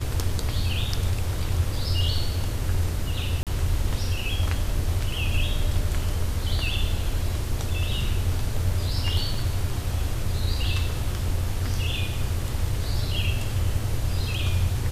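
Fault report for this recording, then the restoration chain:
3.43–3.47 s: dropout 37 ms
9.34 s: dropout 2.6 ms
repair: interpolate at 3.43 s, 37 ms; interpolate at 9.34 s, 2.6 ms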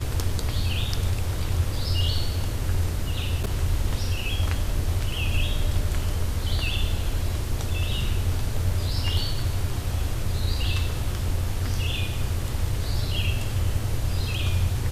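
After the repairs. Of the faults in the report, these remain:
nothing left

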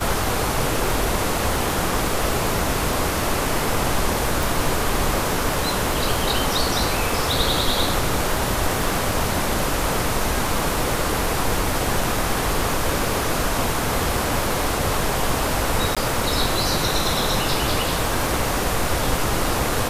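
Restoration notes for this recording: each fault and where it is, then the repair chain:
crackle 40 per s -27 dBFS
4.43 s: pop
15.95–15.97 s: dropout 16 ms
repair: de-click; interpolate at 15.95 s, 16 ms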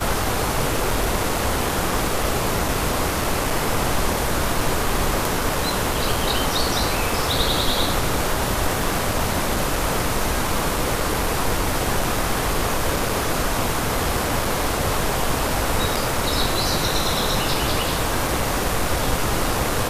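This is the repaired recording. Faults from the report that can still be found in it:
nothing left

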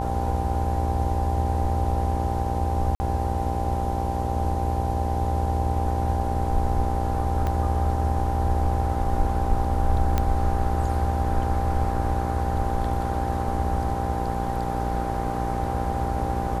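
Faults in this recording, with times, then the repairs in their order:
buzz 60 Hz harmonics 17 -29 dBFS
whine 790 Hz -29 dBFS
2.95–3.00 s: dropout 50 ms
7.47 s: pop -16 dBFS
10.18 s: pop -10 dBFS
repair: de-click; de-hum 60 Hz, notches 17; band-stop 790 Hz, Q 30; interpolate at 2.95 s, 50 ms

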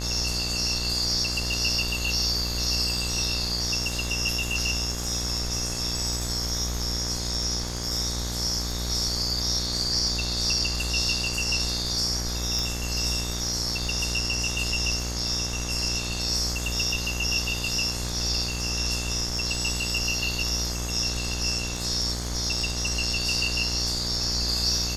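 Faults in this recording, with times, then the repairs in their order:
buzz 60 Hz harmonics 37 -32 dBFS
crackle 35 per s -34 dBFS
12.59 s: pop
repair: de-click; de-hum 60 Hz, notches 37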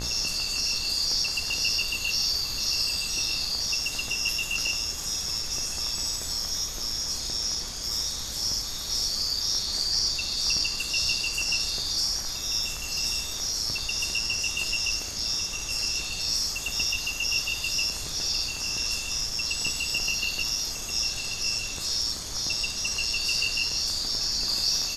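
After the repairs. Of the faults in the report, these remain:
nothing left

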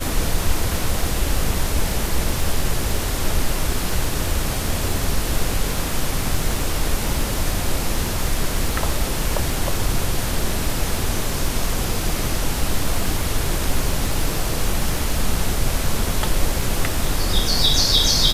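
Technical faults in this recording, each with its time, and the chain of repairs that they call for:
crackle 54 per s -26 dBFS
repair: de-click

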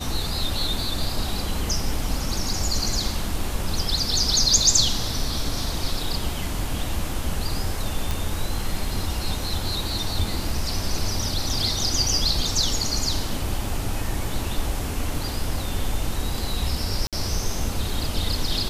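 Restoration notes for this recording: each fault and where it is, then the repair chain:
8.11 s: pop
17.07–17.13 s: dropout 57 ms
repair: de-click; interpolate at 17.07 s, 57 ms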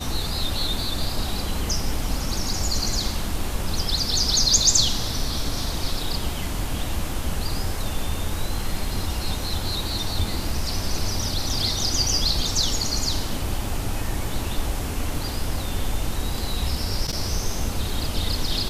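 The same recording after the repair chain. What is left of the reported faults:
nothing left

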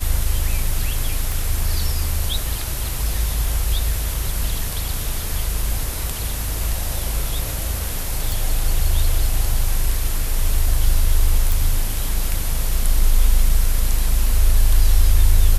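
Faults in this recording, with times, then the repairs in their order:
1.32 s: pop
8.32 s: pop
11.52 s: pop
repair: de-click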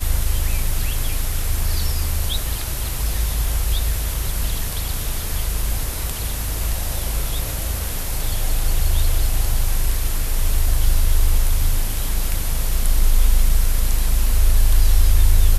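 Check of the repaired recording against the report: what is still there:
nothing left

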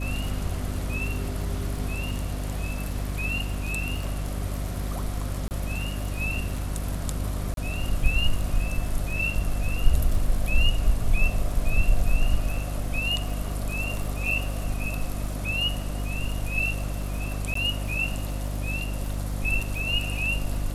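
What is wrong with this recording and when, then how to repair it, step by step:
crackle 21 per s -32 dBFS
hum 50 Hz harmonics 6 -30 dBFS
5.48–5.51 s: dropout 29 ms
7.54–7.57 s: dropout 32 ms
17.54–17.55 s: dropout 14 ms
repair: de-click; de-hum 50 Hz, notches 6; interpolate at 5.48 s, 29 ms; interpolate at 7.54 s, 32 ms; interpolate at 17.54 s, 14 ms

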